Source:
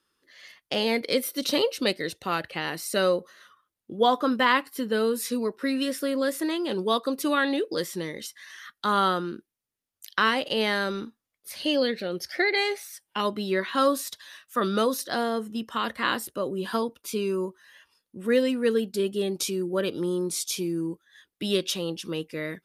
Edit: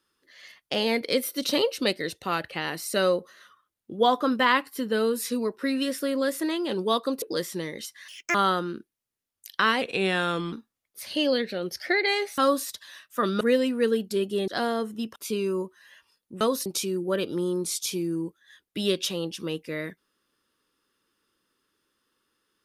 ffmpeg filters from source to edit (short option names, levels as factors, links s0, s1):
-filter_complex "[0:a]asplit=12[s0][s1][s2][s3][s4][s5][s6][s7][s8][s9][s10][s11];[s0]atrim=end=7.222[s12];[s1]atrim=start=7.628:end=8.494[s13];[s2]atrim=start=8.49:end=8.93,asetpts=PTS-STARTPTS,asetrate=73206,aresample=44100,atrim=end_sample=11689,asetpts=PTS-STARTPTS[s14];[s3]atrim=start=8.926:end=10.404[s15];[s4]atrim=start=10.4:end=11.02,asetpts=PTS-STARTPTS,asetrate=38367,aresample=44100[s16];[s5]atrim=start=11.016:end=12.872[s17];[s6]atrim=start=13.758:end=14.792[s18];[s7]atrim=start=18.238:end=19.312[s19];[s8]atrim=start=15.038:end=15.722[s20];[s9]atrim=start=16.988:end=18.242[s21];[s10]atrim=start=14.788:end=15.042[s22];[s11]atrim=start=19.308[s23];[s12][s13]acrossfade=d=0.004:c1=hsin:c2=hsin[s24];[s24][s14]acrossfade=d=0.004:c1=hsin:c2=hsin[s25];[s25][s15]acrossfade=d=0.004:c1=hsin:c2=hsin[s26];[s26][s16]acrossfade=d=0.004:c1=hsin:c2=hsin[s27];[s27][s17]acrossfade=d=0.004:c1=hsin:c2=hsin[s28];[s28][s18]acrossfade=d=0.004:c1=hsin:c2=hsin[s29];[s29][s19]acrossfade=d=0.004:c1=hsin:c2=hsin[s30];[s30][s20]acrossfade=d=0.004:c1=hsin:c2=hsin[s31];[s31][s21]acrossfade=d=0.004:c1=hsin:c2=hsin[s32];[s32][s22]acrossfade=d=0.004:c1=hsin:c2=hsin[s33];[s33][s23]acrossfade=d=0.004:c1=hsin:c2=hsin"